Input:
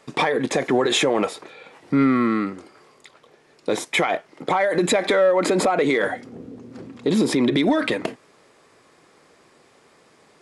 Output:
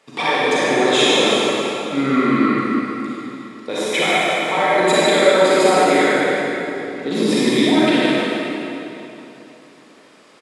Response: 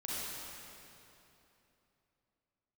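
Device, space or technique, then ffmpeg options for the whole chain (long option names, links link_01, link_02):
stadium PA: -filter_complex "[0:a]highpass=frequency=220:poles=1,equalizer=frequency=2900:width_type=o:width=1.1:gain=4,aecho=1:1:145.8|268.2:0.355|0.316[link_01];[1:a]atrim=start_sample=2205[link_02];[link_01][link_02]afir=irnorm=-1:irlink=0,volume=1.5dB"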